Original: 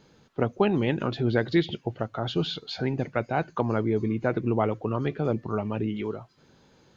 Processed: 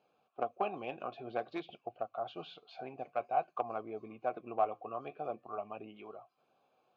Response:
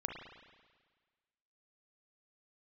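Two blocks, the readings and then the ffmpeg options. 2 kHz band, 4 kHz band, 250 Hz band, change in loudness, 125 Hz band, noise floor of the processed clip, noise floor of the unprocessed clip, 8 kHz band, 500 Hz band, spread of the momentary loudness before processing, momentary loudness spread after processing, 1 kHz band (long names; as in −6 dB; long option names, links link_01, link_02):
−15.0 dB, −18.5 dB, −21.0 dB, −12.0 dB, −29.0 dB, −77 dBFS, −60 dBFS, can't be measured, −11.0 dB, 8 LU, 13 LU, −3.5 dB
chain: -filter_complex "[0:a]aeval=exprs='0.355*(cos(1*acos(clip(val(0)/0.355,-1,1)))-cos(1*PI/2))+0.0501*(cos(3*acos(clip(val(0)/0.355,-1,1)))-cos(3*PI/2))+0.00224*(cos(5*acos(clip(val(0)/0.355,-1,1)))-cos(5*PI/2))+0.01*(cos(6*acos(clip(val(0)/0.355,-1,1)))-cos(6*PI/2))+0.00891*(cos(8*acos(clip(val(0)/0.355,-1,1)))-cos(8*PI/2))':channel_layout=same,flanger=delay=0.4:depth=7.8:regen=-71:speed=0.51:shape=sinusoidal,asplit=3[link_01][link_02][link_03];[link_01]bandpass=frequency=730:width_type=q:width=8,volume=0dB[link_04];[link_02]bandpass=frequency=1090:width_type=q:width=8,volume=-6dB[link_05];[link_03]bandpass=frequency=2440:width_type=q:width=8,volume=-9dB[link_06];[link_04][link_05][link_06]amix=inputs=3:normalize=0,volume=8.5dB"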